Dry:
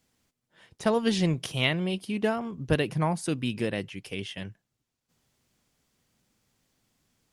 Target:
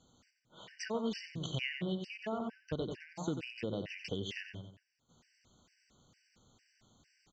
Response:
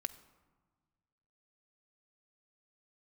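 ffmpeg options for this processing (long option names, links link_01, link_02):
-af "aresample=16000,aresample=44100,aecho=1:1:91|182|273|364:0.355|0.128|0.046|0.0166,acompressor=threshold=-41dB:ratio=5,afftfilt=real='re*gt(sin(2*PI*2.2*pts/sr)*(1-2*mod(floor(b*sr/1024/1500),2)),0)':imag='im*gt(sin(2*PI*2.2*pts/sr)*(1-2*mod(floor(b*sr/1024/1500),2)),0)':win_size=1024:overlap=0.75,volume=7dB"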